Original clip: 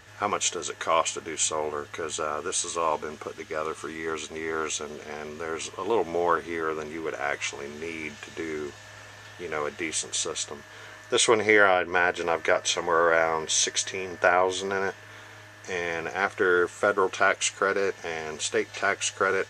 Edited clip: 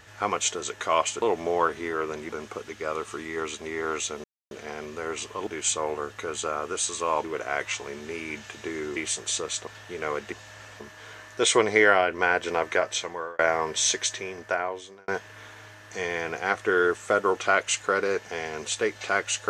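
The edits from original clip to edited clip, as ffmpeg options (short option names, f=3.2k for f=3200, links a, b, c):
-filter_complex "[0:a]asplit=12[a][b][c][d][e][f][g][h][i][j][k][l];[a]atrim=end=1.222[m];[b]atrim=start=5.898:end=6.972[n];[c]atrim=start=2.988:end=4.94,asetpts=PTS-STARTPTS,afade=t=out:st=1.948:d=0.004:c=hsin,apad=pad_dur=0.27[o];[d]atrim=start=4.94:end=5.902,asetpts=PTS-STARTPTS,afade=t=in:d=0.004:c=hsin[p];[e]atrim=start=1.218:end=2.992[q];[f]atrim=start=6.968:end=8.692[r];[g]atrim=start=9.818:end=10.532[s];[h]atrim=start=9.168:end=9.822[t];[i]atrim=start=8.688:end=9.172[u];[j]atrim=start=10.528:end=13.12,asetpts=PTS-STARTPTS,afade=t=out:st=1.702:d=0.89:c=qsin[v];[k]atrim=start=13.12:end=14.81,asetpts=PTS-STARTPTS,afade=t=in:d=0.004:c=hsin,afade=t=out:st=0.6:d=1.09[w];[l]atrim=start=14.81,asetpts=PTS-STARTPTS,afade=t=in:d=0.004:c=hsin[x];[m][n]acrossfade=d=0.004:c1=hsin:c2=hsin[y];[o][p]concat=n=2:v=0:a=1[z];[y][z]acrossfade=d=0.004:c1=hsin:c2=hsin[aa];[aa][q]acrossfade=d=0.004:c1=hsin:c2=hsin[ab];[ab][r]acrossfade=d=0.004:c1=hsin:c2=hsin[ac];[ac][s]acrossfade=d=0.004:c1=hsin:c2=hsin[ad];[ad][t]acrossfade=d=0.004:c1=hsin:c2=hsin[ae];[ae][u]acrossfade=d=0.004:c1=hsin:c2=hsin[af];[v][w][x]concat=n=3:v=0:a=1[ag];[af][ag]acrossfade=d=0.004:c1=hsin:c2=hsin"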